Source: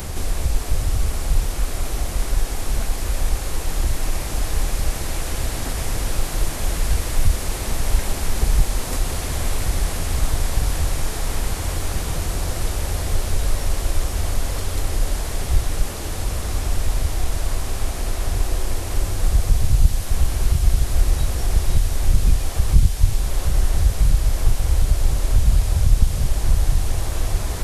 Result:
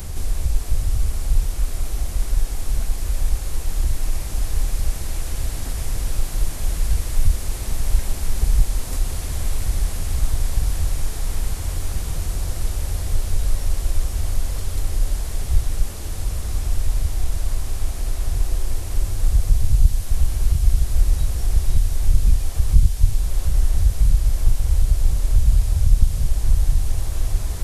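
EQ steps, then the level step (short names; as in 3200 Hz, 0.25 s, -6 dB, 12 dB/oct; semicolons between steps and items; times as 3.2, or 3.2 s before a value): low shelf 140 Hz +10 dB; high shelf 4100 Hz +6 dB; -8.5 dB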